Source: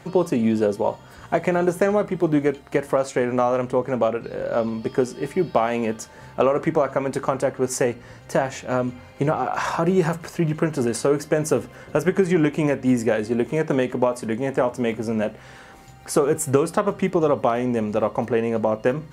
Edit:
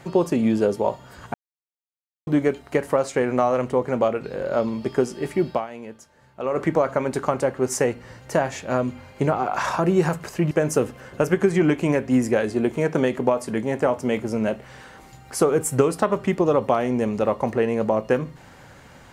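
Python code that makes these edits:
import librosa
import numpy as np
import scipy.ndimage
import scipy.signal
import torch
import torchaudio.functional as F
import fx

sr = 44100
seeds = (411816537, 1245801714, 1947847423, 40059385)

y = fx.edit(x, sr, fx.silence(start_s=1.34, length_s=0.93),
    fx.fade_down_up(start_s=5.47, length_s=1.13, db=-13.5, fade_s=0.19),
    fx.cut(start_s=10.51, length_s=0.75), tone=tone)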